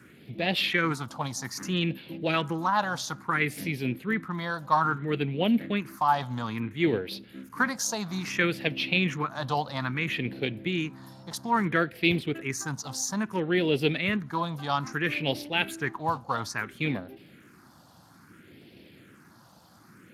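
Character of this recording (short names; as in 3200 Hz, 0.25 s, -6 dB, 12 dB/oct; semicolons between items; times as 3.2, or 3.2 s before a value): phasing stages 4, 0.6 Hz, lowest notch 370–1200 Hz; Speex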